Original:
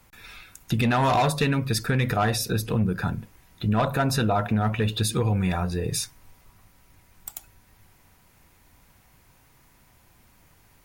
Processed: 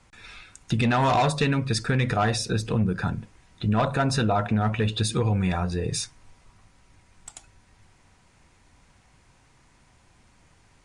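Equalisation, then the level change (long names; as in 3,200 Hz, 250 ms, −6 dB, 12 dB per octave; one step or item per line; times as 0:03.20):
Butterworth low-pass 9,300 Hz 48 dB per octave
0.0 dB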